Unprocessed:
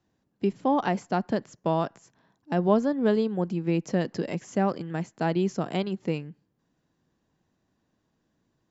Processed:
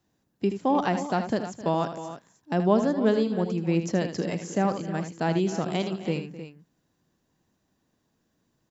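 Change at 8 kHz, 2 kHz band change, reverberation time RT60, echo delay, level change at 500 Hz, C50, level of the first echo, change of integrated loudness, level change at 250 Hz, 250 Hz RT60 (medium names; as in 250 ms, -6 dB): no reading, +1.5 dB, no reverb, 78 ms, +0.5 dB, no reverb, -9.5 dB, +1.0 dB, +1.0 dB, no reverb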